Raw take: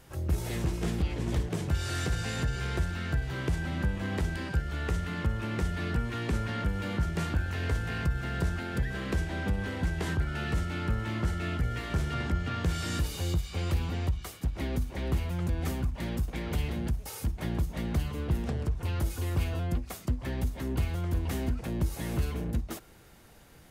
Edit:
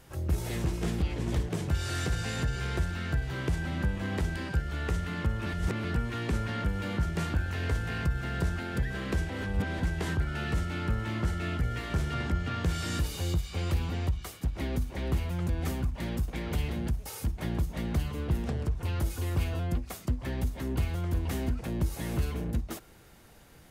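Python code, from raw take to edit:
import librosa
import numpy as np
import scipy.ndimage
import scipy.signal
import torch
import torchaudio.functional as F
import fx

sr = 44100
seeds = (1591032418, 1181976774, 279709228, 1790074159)

y = fx.edit(x, sr, fx.reverse_span(start_s=5.46, length_s=0.38),
    fx.reverse_span(start_s=9.3, length_s=0.5), tone=tone)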